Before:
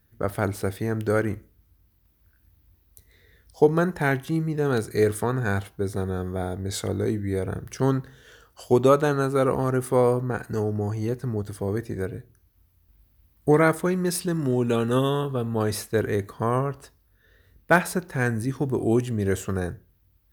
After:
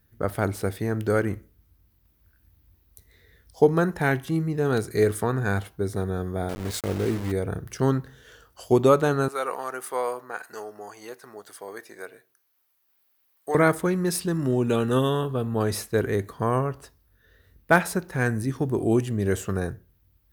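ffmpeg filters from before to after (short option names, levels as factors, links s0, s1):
-filter_complex "[0:a]asettb=1/sr,asplit=3[s0][s1][s2];[s0]atrim=end=6.494[s3];[s1]atrim=start=6.49:end=7.32,asetpts=PTS-STARTPTS,afade=t=in:d=0.004:c=qsin,afade=t=out:st=0.826:d=0.004:c=qsin,aeval=exprs='val(0)*gte(abs(val(0)),0.0282)':c=same[s4];[s2]atrim=start=7.316[s5];[s3][s4]acrossfade=d=0.004:c1=hsin:c2=qsin[s6];[s6][s5]acrossfade=d=0.004:c1=qsin:c2=hsin,asettb=1/sr,asplit=3[s7][s8][s9];[s7]atrim=end=9.284[s10];[s8]atrim=start=9.28:end=13.55,asetpts=PTS-STARTPTS,afade=t=in:d=0.004:c=qsin,afade=t=out:st=4.266:d=0.004:c=qsin,highpass=770[s11];[s9]atrim=start=13.546[s12];[s10][s11]acrossfade=d=0.004:c1=hsin:c2=qsin[s13];[s13][s12]acrossfade=d=0.004:c1=qsin:c2=hsin"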